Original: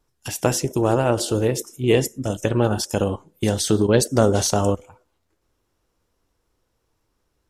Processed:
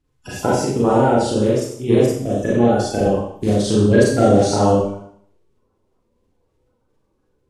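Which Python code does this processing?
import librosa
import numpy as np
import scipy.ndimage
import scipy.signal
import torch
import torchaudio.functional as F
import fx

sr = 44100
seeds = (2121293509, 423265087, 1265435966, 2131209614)

y = fx.spec_quant(x, sr, step_db=30)
y = scipy.signal.sosfilt(scipy.signal.butter(2, 11000.0, 'lowpass', fs=sr, output='sos'), y)
y = fx.high_shelf(y, sr, hz=3400.0, db=-10.0)
y = fx.rev_schroeder(y, sr, rt60_s=0.63, comb_ms=30, drr_db=-6.0)
y = F.gain(torch.from_numpy(y), -1.5).numpy()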